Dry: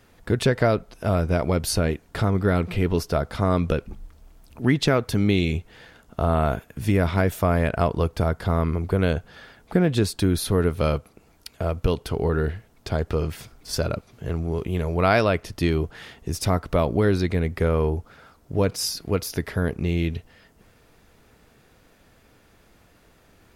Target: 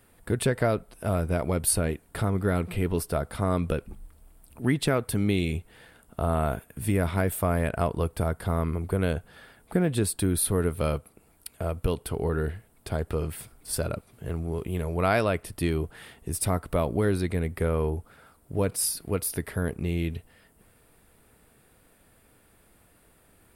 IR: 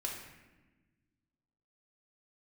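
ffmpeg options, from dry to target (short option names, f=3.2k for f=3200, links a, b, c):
-af "highshelf=f=7.5k:t=q:w=3:g=6.5,volume=-4.5dB"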